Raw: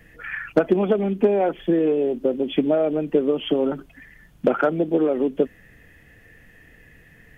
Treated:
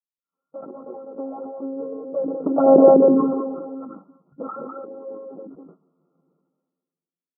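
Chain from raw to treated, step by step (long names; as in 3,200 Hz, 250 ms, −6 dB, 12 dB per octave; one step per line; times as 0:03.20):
source passing by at 0:02.80, 16 m/s, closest 1 metre
dynamic equaliser 890 Hz, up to +4 dB, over −41 dBFS, Q 0.76
one-pitch LPC vocoder at 8 kHz 270 Hz
single-tap delay 202 ms −3 dB
downward expander −53 dBFS
high-frequency loss of the air 160 metres
flanger swept by the level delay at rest 11.5 ms, full sweep at −21.5 dBFS
automatic gain control gain up to 14.5 dB
brick-wall band-pass 140–1,400 Hz
level that may fall only so fast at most 37 dB per second
level +4 dB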